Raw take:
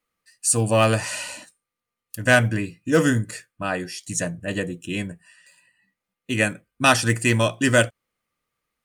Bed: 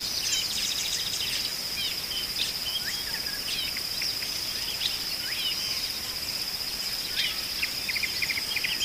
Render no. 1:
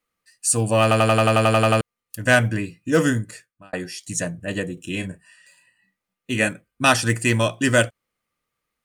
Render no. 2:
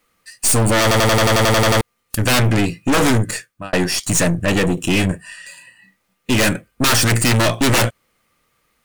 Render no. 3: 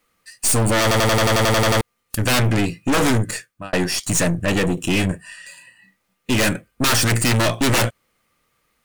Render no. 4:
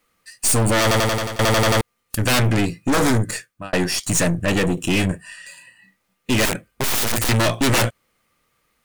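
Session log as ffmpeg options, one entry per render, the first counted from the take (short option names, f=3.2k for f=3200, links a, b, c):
-filter_complex "[0:a]asettb=1/sr,asplit=3[a][b][c];[a]atrim=end=4.744[d];[b]atrim=start=4.74:end=6.49,asetpts=PTS-STARTPTS,afade=t=in:d=0.004:c=qsin,afade=t=out:st=1.746:d=0.004:c=qsin,asplit=2[e][f];[f]adelay=32,volume=-8dB[g];[e][g]amix=inputs=2:normalize=0,atrim=end_sample=77175[h];[c]atrim=start=6.486[i];[d][h]acrossfade=d=0.004:c1=hsin:c2=qsin[j];[j][i]acrossfade=d=0.004:c1=qsin:c2=hsin,asplit=13[k][l][m][n][o][p][q][r][s][t][u][v][w];[k]atrim=end=0.912[x];[l]atrim=start=0.818:end=0.912[y];[m]atrim=start=0.818:end=0.912[z];[n]atrim=start=0.818:end=0.912[aa];[o]atrim=start=0.818:end=0.912[ab];[p]atrim=start=0.818:end=0.912[ac];[q]atrim=start=0.818:end=0.912[ad];[r]atrim=start=0.818:end=0.912[ae];[s]atrim=start=0.818:end=0.912[af];[t]atrim=start=0.818:end=0.912[ag];[u]atrim=start=0.818:end=0.912[ah];[v]atrim=start=1.808:end=3.73,asetpts=PTS-STARTPTS,afade=t=out:st=1.252:d=0.67[ai];[w]atrim=start=3.73,asetpts=PTS-STARTPTS,afade=t=in:d=0.004:c=hsin[aj];[x][y]acrossfade=d=0.004:c1=hsin:c2=hsin[ak];[ak][z]acrossfade=d=0.004:c1=hsin:c2=hsin[al];[al][aa]acrossfade=d=0.004:c1=hsin:c2=hsin[am];[am][ab]acrossfade=d=0.004:c1=hsin:c2=hsin[an];[an][ac]acrossfade=d=0.004:c1=hsin:c2=hsin[ao];[ao][ad]acrossfade=d=0.004:c1=hsin:c2=hsin[ap];[ap][ae]acrossfade=d=0.004:c1=hsin:c2=hsin[aq];[aq][af]acrossfade=d=0.004:c1=hsin:c2=hsin[ar];[ar][ag]acrossfade=d=0.004:c1=hsin:c2=hsin[as];[as][ah]acrossfade=d=0.004:c1=hsin:c2=hsin[at];[ai][aj]concat=n=2:v=0:a=1[au];[at][au]acrossfade=d=0.004:c1=hsin:c2=hsin"
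-af "aeval=exprs='0.708*sin(PI/2*5.01*val(0)/0.708)':c=same,aeval=exprs='(tanh(4.47*val(0)+0.55)-tanh(0.55))/4.47':c=same"
-af "volume=-2.5dB"
-filter_complex "[0:a]asettb=1/sr,asplit=3[a][b][c];[a]atrim=end=2.654[d];[b]atrim=start=2.65:end=3.31,asetpts=PTS-STARTPTS,afade=t=in:d=0.004:c=qsin,afade=t=out:st=0.656:d=0.004:c=qsin,equalizer=f=2.8k:t=o:w=0.45:g=-6[e];[c]atrim=start=3.306[f];[d][e]acrossfade=d=0.004:c1=hsin:c2=qsin[g];[g][f]acrossfade=d=0.004:c1=qsin:c2=hsin,asettb=1/sr,asplit=3[h][i][j];[h]atrim=end=6.454[k];[i]atrim=start=6.45:end=7.29,asetpts=PTS-STARTPTS,afade=t=in:d=0.004:c=qsin,afade=t=out:st=0.836:d=0.004:c=qsin,aeval=exprs='(mod(5.31*val(0)+1,2)-1)/5.31':c=same[l];[j]atrim=start=7.286[m];[k][l]acrossfade=d=0.004:c1=hsin:c2=qsin[n];[n][m]acrossfade=d=0.004:c1=qsin:c2=hsin,asplit=2[o][p];[o]atrim=end=1.39,asetpts=PTS-STARTPTS,afade=t=out:st=0.95:d=0.44:silence=0.1[q];[p]atrim=start=1.39,asetpts=PTS-STARTPTS,afade=t=in:d=0.004:c=hsin:silence=0.1[r];[q][r]concat=n=2:v=0:a=1"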